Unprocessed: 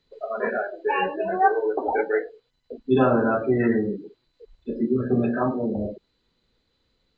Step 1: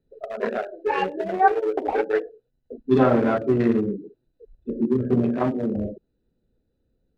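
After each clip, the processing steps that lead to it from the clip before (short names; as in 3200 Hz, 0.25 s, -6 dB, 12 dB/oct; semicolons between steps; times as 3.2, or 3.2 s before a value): Wiener smoothing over 41 samples; gain +2 dB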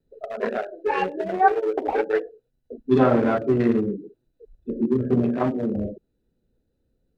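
vibrato 0.63 Hz 13 cents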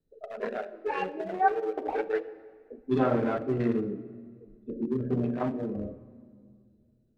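shoebox room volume 3900 m³, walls mixed, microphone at 0.5 m; gain -7.5 dB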